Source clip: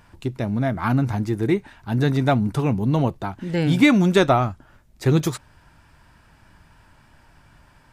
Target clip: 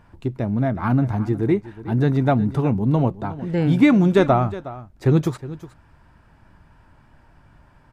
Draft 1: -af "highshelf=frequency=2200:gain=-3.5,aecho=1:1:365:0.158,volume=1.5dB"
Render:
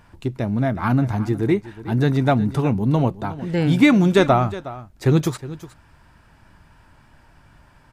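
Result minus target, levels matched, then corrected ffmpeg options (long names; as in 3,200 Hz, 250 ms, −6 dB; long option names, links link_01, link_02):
4,000 Hz band +6.0 dB
-af "highshelf=frequency=2200:gain=-12.5,aecho=1:1:365:0.158,volume=1.5dB"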